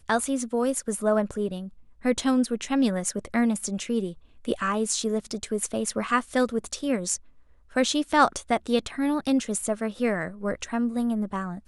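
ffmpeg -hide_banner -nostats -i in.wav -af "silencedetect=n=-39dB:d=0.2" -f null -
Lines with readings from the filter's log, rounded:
silence_start: 1.69
silence_end: 2.04 | silence_duration: 0.35
silence_start: 4.13
silence_end: 4.45 | silence_duration: 0.32
silence_start: 7.16
silence_end: 7.73 | silence_duration: 0.56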